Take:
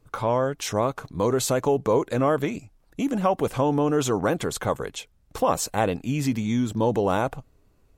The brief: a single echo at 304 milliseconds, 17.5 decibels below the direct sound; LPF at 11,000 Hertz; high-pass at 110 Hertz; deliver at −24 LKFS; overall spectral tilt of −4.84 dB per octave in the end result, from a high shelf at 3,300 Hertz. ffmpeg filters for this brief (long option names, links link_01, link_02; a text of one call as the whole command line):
ffmpeg -i in.wav -af "highpass=110,lowpass=11000,highshelf=frequency=3300:gain=-8,aecho=1:1:304:0.133,volume=1dB" out.wav